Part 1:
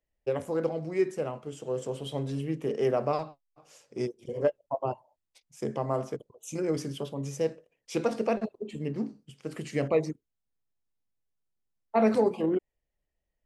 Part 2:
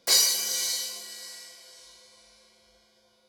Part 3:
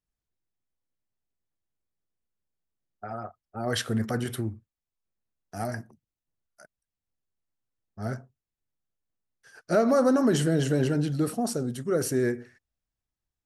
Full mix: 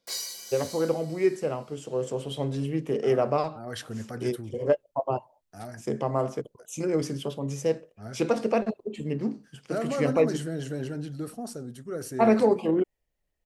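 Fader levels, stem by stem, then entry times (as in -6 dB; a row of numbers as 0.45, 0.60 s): +3.0, -13.5, -8.5 dB; 0.25, 0.00, 0.00 s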